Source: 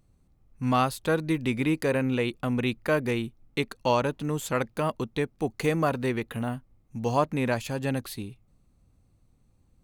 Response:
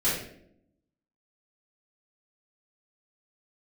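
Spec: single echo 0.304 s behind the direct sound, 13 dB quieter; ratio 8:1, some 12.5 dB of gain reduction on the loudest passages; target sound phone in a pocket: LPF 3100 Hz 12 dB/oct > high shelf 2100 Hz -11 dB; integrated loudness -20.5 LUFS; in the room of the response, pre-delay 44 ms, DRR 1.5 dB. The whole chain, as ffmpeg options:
-filter_complex "[0:a]acompressor=threshold=-32dB:ratio=8,aecho=1:1:304:0.224,asplit=2[a][b];[1:a]atrim=start_sample=2205,adelay=44[c];[b][c]afir=irnorm=-1:irlink=0,volume=-13dB[d];[a][d]amix=inputs=2:normalize=0,lowpass=3.1k,highshelf=f=2.1k:g=-11,volume=14.5dB"

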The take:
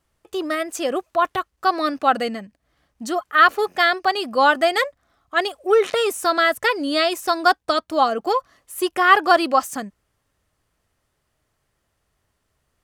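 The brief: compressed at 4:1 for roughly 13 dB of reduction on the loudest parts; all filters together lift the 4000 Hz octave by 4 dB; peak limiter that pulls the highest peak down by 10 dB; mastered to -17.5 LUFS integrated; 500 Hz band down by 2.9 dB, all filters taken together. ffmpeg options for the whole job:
-af "equalizer=f=500:t=o:g=-4,equalizer=f=4k:t=o:g=5,acompressor=threshold=-24dB:ratio=4,volume=14dB,alimiter=limit=-7dB:level=0:latency=1"

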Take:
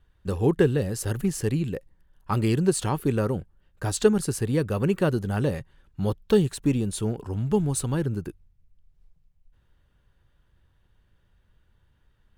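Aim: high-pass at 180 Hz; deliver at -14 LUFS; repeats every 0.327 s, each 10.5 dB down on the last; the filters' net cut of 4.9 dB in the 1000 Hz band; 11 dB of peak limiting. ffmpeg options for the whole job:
-af "highpass=180,equalizer=f=1k:t=o:g=-6.5,alimiter=limit=-18dB:level=0:latency=1,aecho=1:1:327|654|981:0.299|0.0896|0.0269,volume=16dB"

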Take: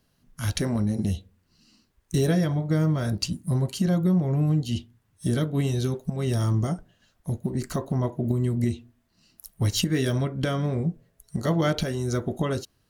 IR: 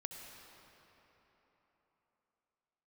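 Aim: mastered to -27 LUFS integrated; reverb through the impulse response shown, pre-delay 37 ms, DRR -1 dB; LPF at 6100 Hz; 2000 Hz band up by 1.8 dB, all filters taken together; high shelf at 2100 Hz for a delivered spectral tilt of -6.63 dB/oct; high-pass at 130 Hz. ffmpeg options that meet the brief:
-filter_complex "[0:a]highpass=130,lowpass=6.1k,equalizer=f=2k:t=o:g=4.5,highshelf=f=2.1k:g=-4,asplit=2[a][b];[1:a]atrim=start_sample=2205,adelay=37[c];[b][c]afir=irnorm=-1:irlink=0,volume=3dB[d];[a][d]amix=inputs=2:normalize=0,volume=-2dB"

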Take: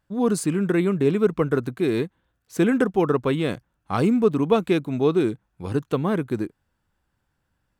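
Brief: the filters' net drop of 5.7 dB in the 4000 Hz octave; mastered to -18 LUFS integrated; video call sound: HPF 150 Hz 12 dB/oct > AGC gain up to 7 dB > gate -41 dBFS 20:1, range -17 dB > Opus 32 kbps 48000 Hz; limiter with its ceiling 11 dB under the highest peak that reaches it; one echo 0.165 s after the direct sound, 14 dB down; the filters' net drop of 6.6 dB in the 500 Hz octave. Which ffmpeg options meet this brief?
-af "equalizer=f=500:t=o:g=-8.5,equalizer=f=4k:t=o:g=-7,alimiter=limit=-22dB:level=0:latency=1,highpass=150,aecho=1:1:165:0.2,dynaudnorm=m=7dB,agate=range=-17dB:threshold=-41dB:ratio=20,volume=14.5dB" -ar 48000 -c:a libopus -b:a 32k

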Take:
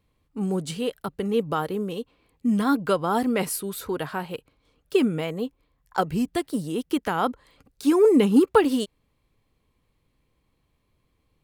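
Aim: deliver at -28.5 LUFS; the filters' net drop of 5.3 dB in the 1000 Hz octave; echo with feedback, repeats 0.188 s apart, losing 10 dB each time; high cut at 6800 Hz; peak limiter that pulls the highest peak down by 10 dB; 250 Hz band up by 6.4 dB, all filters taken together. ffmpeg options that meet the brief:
-af "lowpass=6.8k,equalizer=f=250:t=o:g=8,equalizer=f=1k:t=o:g=-8,alimiter=limit=-12dB:level=0:latency=1,aecho=1:1:188|376|564|752:0.316|0.101|0.0324|0.0104,volume=-6dB"

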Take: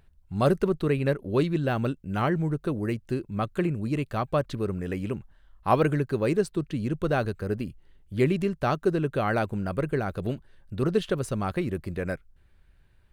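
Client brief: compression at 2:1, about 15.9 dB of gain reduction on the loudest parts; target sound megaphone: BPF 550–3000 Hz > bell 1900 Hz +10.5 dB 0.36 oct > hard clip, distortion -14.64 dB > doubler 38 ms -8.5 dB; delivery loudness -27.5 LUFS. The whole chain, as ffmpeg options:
-filter_complex "[0:a]acompressor=threshold=-48dB:ratio=2,highpass=550,lowpass=3k,equalizer=f=1.9k:t=o:w=0.36:g=10.5,asoftclip=type=hard:threshold=-34.5dB,asplit=2[a][b];[b]adelay=38,volume=-8.5dB[c];[a][c]amix=inputs=2:normalize=0,volume=19dB"

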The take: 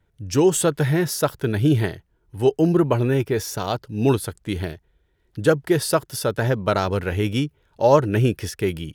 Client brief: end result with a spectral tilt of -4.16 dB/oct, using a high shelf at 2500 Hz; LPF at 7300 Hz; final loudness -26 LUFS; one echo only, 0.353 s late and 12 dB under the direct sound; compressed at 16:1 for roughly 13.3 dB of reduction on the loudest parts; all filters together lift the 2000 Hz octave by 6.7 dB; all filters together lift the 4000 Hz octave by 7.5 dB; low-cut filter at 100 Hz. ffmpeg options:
-af "highpass=100,lowpass=7.3k,equalizer=f=2k:t=o:g=5.5,highshelf=f=2.5k:g=5.5,equalizer=f=4k:t=o:g=3.5,acompressor=threshold=-23dB:ratio=16,aecho=1:1:353:0.251,volume=2.5dB"

